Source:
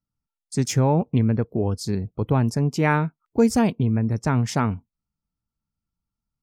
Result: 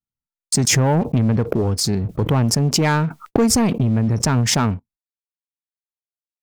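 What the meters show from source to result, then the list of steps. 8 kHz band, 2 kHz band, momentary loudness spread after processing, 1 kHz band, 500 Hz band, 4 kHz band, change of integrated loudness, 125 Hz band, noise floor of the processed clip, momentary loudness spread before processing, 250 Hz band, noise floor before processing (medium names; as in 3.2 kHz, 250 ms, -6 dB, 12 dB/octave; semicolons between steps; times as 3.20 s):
+14.0 dB, +4.0 dB, 6 LU, +2.5 dB, +2.5 dB, +13.5 dB, +4.0 dB, +3.5 dB, under -85 dBFS, 7 LU, +3.0 dB, under -85 dBFS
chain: gate -51 dBFS, range -44 dB; waveshaping leveller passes 2; swell ahead of each attack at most 23 dB/s; trim -2.5 dB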